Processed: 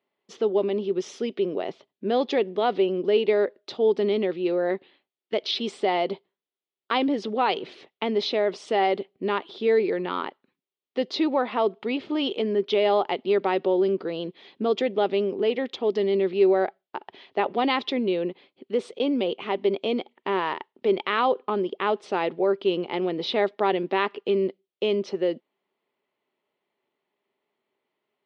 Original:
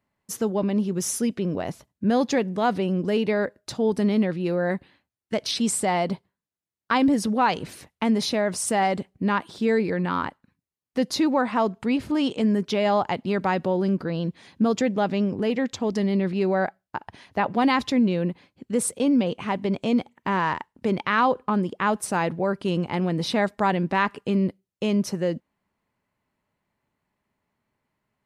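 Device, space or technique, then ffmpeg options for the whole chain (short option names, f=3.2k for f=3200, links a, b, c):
phone earpiece: -af "highpass=370,equalizer=f=390:t=q:w=4:g=10,equalizer=f=1k:t=q:w=4:g=-4,equalizer=f=1.6k:t=q:w=4:g=-7,equalizer=f=3.3k:t=q:w=4:g=6,lowpass=f=4.2k:w=0.5412,lowpass=f=4.2k:w=1.3066"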